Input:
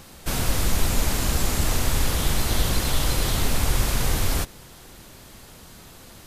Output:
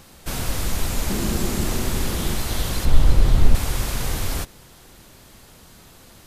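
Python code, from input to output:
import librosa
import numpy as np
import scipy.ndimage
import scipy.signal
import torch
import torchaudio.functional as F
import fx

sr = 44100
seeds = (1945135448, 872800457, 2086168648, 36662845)

y = fx.small_body(x, sr, hz=(210.0, 350.0), ring_ms=45, db=fx.line((1.08, 12.0), (2.34, 8.0)), at=(1.08, 2.34), fade=0.02)
y = fx.tilt_eq(y, sr, slope=-2.5, at=(2.85, 3.55))
y = y * librosa.db_to_amplitude(-2.0)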